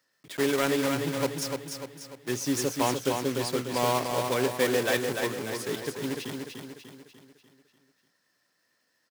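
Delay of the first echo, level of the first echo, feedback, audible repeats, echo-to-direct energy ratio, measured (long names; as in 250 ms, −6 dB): 296 ms, −5.0 dB, 48%, 5, −4.0 dB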